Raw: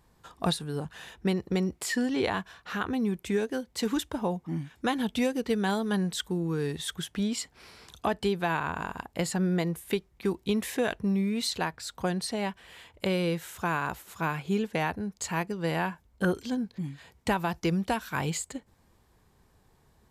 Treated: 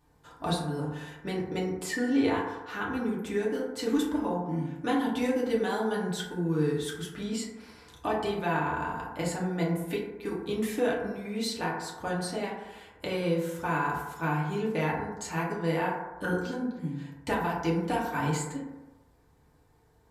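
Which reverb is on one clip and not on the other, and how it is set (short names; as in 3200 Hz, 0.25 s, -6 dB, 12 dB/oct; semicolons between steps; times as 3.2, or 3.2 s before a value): FDN reverb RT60 1.1 s, low-frequency decay 0.85×, high-frequency decay 0.3×, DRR -5.5 dB; gain -7 dB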